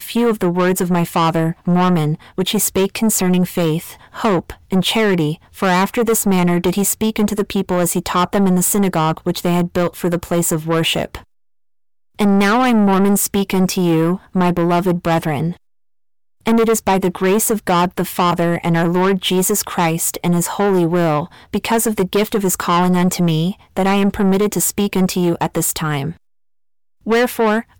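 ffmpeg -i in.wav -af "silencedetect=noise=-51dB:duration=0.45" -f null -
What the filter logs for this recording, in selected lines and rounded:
silence_start: 11.24
silence_end: 12.15 | silence_duration: 0.91
silence_start: 15.57
silence_end: 16.41 | silence_duration: 0.84
silence_start: 26.17
silence_end: 27.01 | silence_duration: 0.84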